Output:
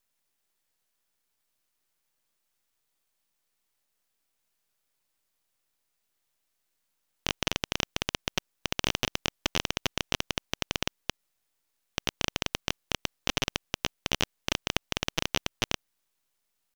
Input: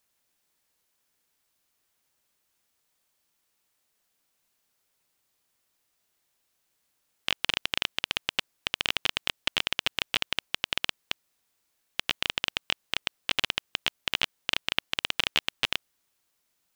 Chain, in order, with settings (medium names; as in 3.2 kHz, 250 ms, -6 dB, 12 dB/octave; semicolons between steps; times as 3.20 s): tempo 1×; half-wave rectifier